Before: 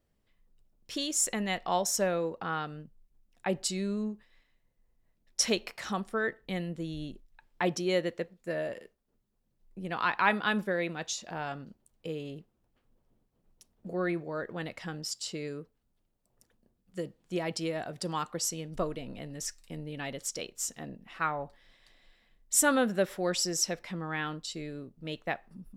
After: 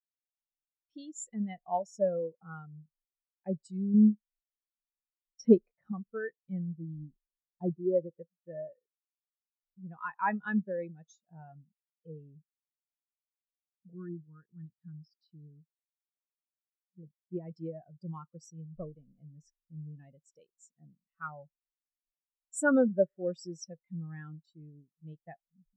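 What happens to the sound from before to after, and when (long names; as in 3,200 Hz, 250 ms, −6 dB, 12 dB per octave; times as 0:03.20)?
0:03.94–0:05.92: tilt shelving filter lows +5.5 dB, about 1,400 Hz
0:07.00–0:08.15: running median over 25 samples
0:13.94–0:17.03: phaser with its sweep stopped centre 2,300 Hz, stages 6
whole clip: parametric band 150 Hz +7 dB 0.44 octaves; every bin expanded away from the loudest bin 2.5 to 1; level +2.5 dB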